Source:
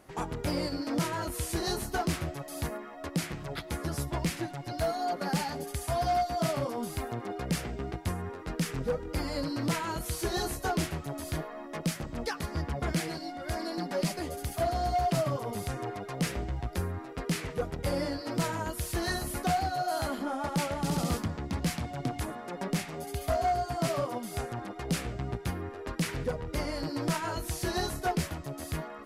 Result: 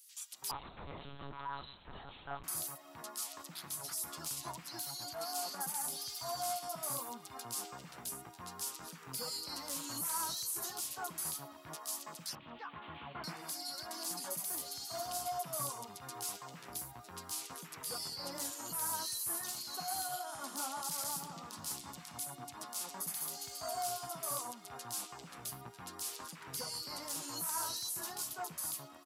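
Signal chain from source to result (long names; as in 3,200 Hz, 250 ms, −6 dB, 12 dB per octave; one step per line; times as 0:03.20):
0:12.35–0:13.24: variable-slope delta modulation 16 kbit/s
first difference
brickwall limiter −36.5 dBFS, peak gain reduction 10.5 dB
octave-band graphic EQ 125/250/500/1,000/2,000 Hz +10/+5/−4/+8/−7 dB
multiband delay without the direct sound highs, lows 330 ms, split 2,400 Hz
0:00.51–0:02.44: one-pitch LPC vocoder at 8 kHz 140 Hz
level +7.5 dB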